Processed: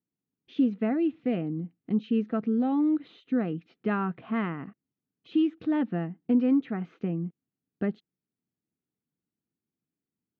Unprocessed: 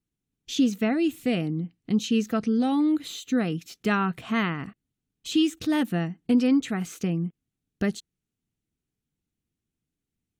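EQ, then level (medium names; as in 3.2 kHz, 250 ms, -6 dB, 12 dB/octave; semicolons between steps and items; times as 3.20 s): high-pass 180 Hz 12 dB/octave; distance through air 310 m; tape spacing loss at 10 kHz 29 dB; 0.0 dB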